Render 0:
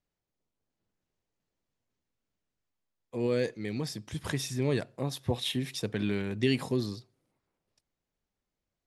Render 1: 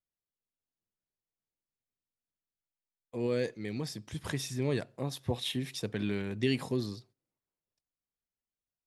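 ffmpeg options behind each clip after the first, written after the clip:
ffmpeg -i in.wav -af "agate=range=-12dB:threshold=-56dB:ratio=16:detection=peak,volume=-2.5dB" out.wav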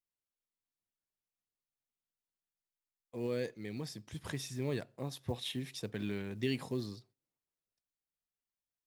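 ffmpeg -i in.wav -af "acrusher=bits=8:mode=log:mix=0:aa=0.000001,volume=-5dB" out.wav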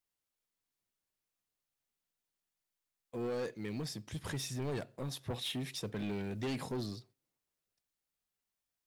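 ffmpeg -i in.wav -af "asoftclip=type=tanh:threshold=-37dB,volume=4.5dB" out.wav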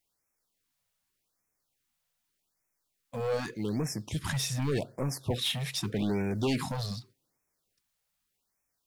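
ffmpeg -i in.wav -af "afftfilt=real='re*(1-between(b*sr/1024,280*pow(3800/280,0.5+0.5*sin(2*PI*0.84*pts/sr))/1.41,280*pow(3800/280,0.5+0.5*sin(2*PI*0.84*pts/sr))*1.41))':imag='im*(1-between(b*sr/1024,280*pow(3800/280,0.5+0.5*sin(2*PI*0.84*pts/sr))/1.41,280*pow(3800/280,0.5+0.5*sin(2*PI*0.84*pts/sr))*1.41))':win_size=1024:overlap=0.75,volume=8.5dB" out.wav

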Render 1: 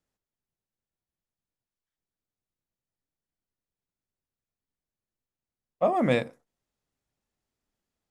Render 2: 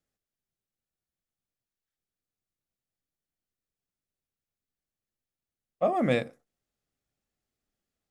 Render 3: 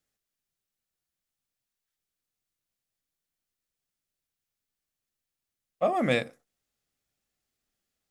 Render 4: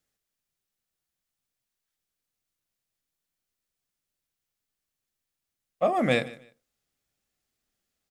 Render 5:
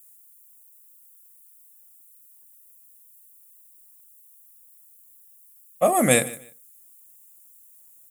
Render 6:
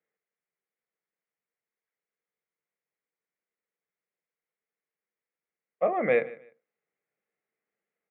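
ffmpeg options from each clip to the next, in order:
ffmpeg -i in.wav -af "bandreject=frequency=960:width=5.3,volume=-1.5dB" out.wav
ffmpeg -i in.wav -af "tiltshelf=frequency=1200:gain=-3.5,volume=2dB" out.wav
ffmpeg -i in.wav -af "aecho=1:1:151|302:0.106|0.0254,volume=1.5dB" out.wav
ffmpeg -i in.wav -af "aexciter=amount=14.6:drive=8.4:freq=7500,volume=4.5dB" out.wav
ffmpeg -i in.wav -af "highpass=frequency=170:width=0.5412,highpass=frequency=170:width=1.3066,equalizer=frequency=260:width_type=q:width=4:gain=-8,equalizer=frequency=460:width_type=q:width=4:gain=10,equalizer=frequency=2100:width_type=q:width=4:gain=8,lowpass=frequency=2200:width=0.5412,lowpass=frequency=2200:width=1.3066,volume=-8dB" out.wav

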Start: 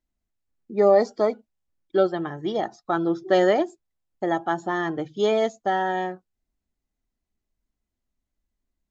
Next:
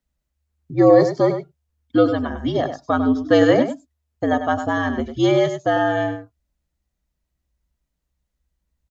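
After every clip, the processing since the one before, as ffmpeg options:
ffmpeg -i in.wav -filter_complex "[0:a]afreqshift=-74,asplit=2[link_01][link_02];[link_02]adelay=99.13,volume=-9dB,highshelf=frequency=4000:gain=-2.23[link_03];[link_01][link_03]amix=inputs=2:normalize=0,volume=4.5dB" out.wav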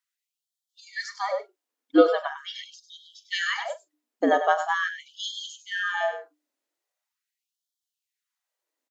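ffmpeg -i in.wav -filter_complex "[0:a]bandreject=frequency=60:width_type=h:width=6,bandreject=frequency=120:width_type=h:width=6,bandreject=frequency=180:width_type=h:width=6,bandreject=frequency=240:width_type=h:width=6,bandreject=frequency=300:width_type=h:width=6,asplit=2[link_01][link_02];[link_02]adelay=41,volume=-14dB[link_03];[link_01][link_03]amix=inputs=2:normalize=0,afftfilt=real='re*gte(b*sr/1024,240*pow(3100/240,0.5+0.5*sin(2*PI*0.42*pts/sr)))':imag='im*gte(b*sr/1024,240*pow(3100/240,0.5+0.5*sin(2*PI*0.42*pts/sr)))':win_size=1024:overlap=0.75" out.wav

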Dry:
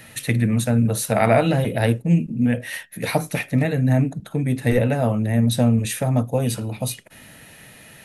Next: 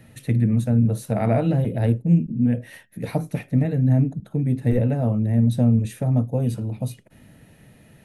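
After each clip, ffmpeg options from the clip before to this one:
ffmpeg -i in.wav -af "tiltshelf=frequency=640:gain=8,volume=-6.5dB" out.wav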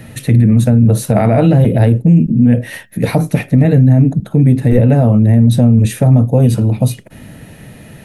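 ffmpeg -i in.wav -af "alimiter=level_in=16dB:limit=-1dB:release=50:level=0:latency=1,volume=-1dB" out.wav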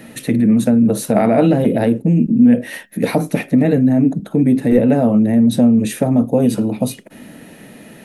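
ffmpeg -i in.wav -af "lowshelf=frequency=160:width_type=q:width=1.5:gain=-12.5,volume=-1.5dB" out.wav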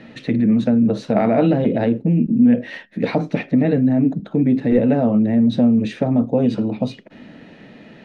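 ffmpeg -i in.wav -af "lowpass=frequency=4700:width=0.5412,lowpass=frequency=4700:width=1.3066,volume=-3dB" out.wav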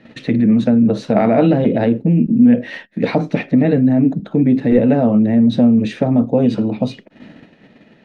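ffmpeg -i in.wav -af "agate=range=-10dB:threshold=-40dB:ratio=16:detection=peak,volume=3dB" out.wav

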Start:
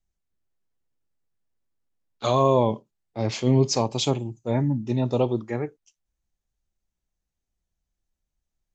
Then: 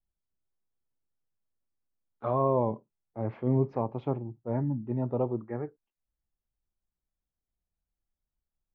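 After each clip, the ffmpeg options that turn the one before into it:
ffmpeg -i in.wav -af "lowpass=frequency=1600:width=0.5412,lowpass=frequency=1600:width=1.3066,volume=-6.5dB" out.wav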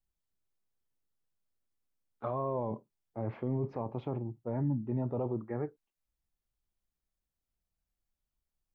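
ffmpeg -i in.wav -af "alimiter=level_in=0.5dB:limit=-24dB:level=0:latency=1:release=17,volume=-0.5dB" out.wav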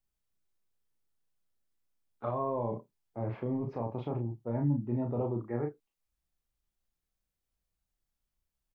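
ffmpeg -i in.wav -filter_complex "[0:a]asplit=2[link_01][link_02];[link_02]adelay=34,volume=-4dB[link_03];[link_01][link_03]amix=inputs=2:normalize=0" out.wav

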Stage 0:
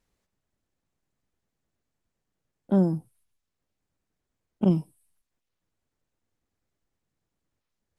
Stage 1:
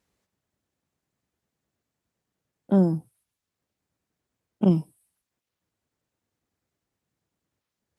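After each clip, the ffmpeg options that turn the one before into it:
ffmpeg -i in.wav -af "highpass=73,volume=2dB" out.wav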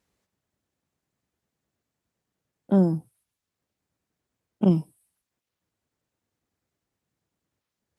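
ffmpeg -i in.wav -af anull out.wav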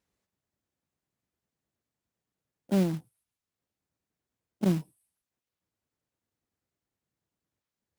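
ffmpeg -i in.wav -af "acrusher=bits=4:mode=log:mix=0:aa=0.000001,volume=-6dB" out.wav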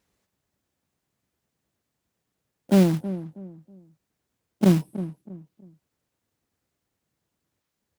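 ffmpeg -i in.wav -filter_complex "[0:a]asplit=2[link_01][link_02];[link_02]adelay=321,lowpass=frequency=890:poles=1,volume=-13dB,asplit=2[link_03][link_04];[link_04]adelay=321,lowpass=frequency=890:poles=1,volume=0.32,asplit=2[link_05][link_06];[link_06]adelay=321,lowpass=frequency=890:poles=1,volume=0.32[link_07];[link_01][link_03][link_05][link_07]amix=inputs=4:normalize=0,volume=8dB" out.wav

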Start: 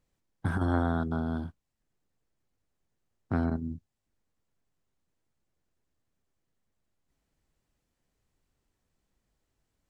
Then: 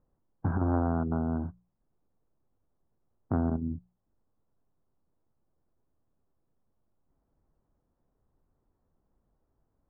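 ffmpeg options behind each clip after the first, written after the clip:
ffmpeg -i in.wav -af "lowpass=frequency=1200:width=0.5412,lowpass=frequency=1200:width=1.3066,bandreject=frequency=60:width_type=h:width=6,bandreject=frequency=120:width_type=h:width=6,bandreject=frequency=180:width_type=h:width=6,acompressor=threshold=-35dB:ratio=1.5,volume=4.5dB" out.wav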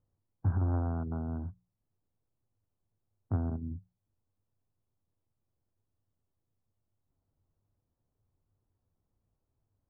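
ffmpeg -i in.wav -af "equalizer=frequency=100:width=2.5:gain=13.5,volume=-8.5dB" out.wav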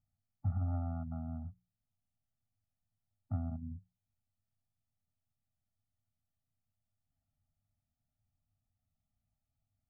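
ffmpeg -i in.wav -af "afftfilt=real='re*eq(mod(floor(b*sr/1024/290),2),0)':imag='im*eq(mod(floor(b*sr/1024/290),2),0)':win_size=1024:overlap=0.75,volume=-5dB" out.wav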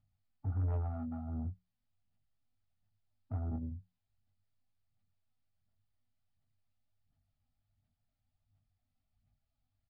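ffmpeg -i in.wav -filter_complex "[0:a]aphaser=in_gain=1:out_gain=1:delay=4:decay=0.51:speed=1.4:type=sinusoidal,aresample=11025,asoftclip=type=tanh:threshold=-32dB,aresample=44100,asplit=2[link_01][link_02];[link_02]adelay=21,volume=-6.5dB[link_03];[link_01][link_03]amix=inputs=2:normalize=0" out.wav

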